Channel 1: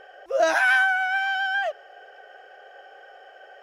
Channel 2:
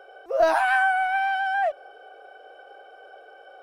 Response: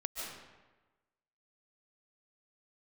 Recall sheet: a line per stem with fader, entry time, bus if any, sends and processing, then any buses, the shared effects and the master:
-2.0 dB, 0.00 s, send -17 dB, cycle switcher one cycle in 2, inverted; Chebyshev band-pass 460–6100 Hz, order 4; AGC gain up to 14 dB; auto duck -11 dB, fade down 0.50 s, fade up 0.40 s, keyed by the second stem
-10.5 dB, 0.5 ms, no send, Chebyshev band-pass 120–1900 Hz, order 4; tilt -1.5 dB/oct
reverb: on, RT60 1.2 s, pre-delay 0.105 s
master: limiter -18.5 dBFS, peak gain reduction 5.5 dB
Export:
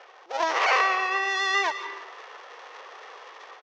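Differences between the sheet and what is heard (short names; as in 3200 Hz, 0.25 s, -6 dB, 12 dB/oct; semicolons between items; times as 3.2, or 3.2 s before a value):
stem 2: polarity flipped; master: missing limiter -18.5 dBFS, peak gain reduction 5.5 dB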